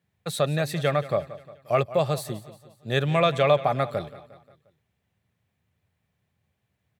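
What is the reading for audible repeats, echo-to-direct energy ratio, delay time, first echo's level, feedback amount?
4, -15.5 dB, 0.177 s, -16.5 dB, 50%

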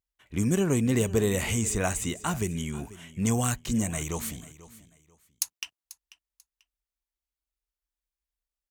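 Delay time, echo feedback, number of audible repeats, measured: 0.49 s, 25%, 2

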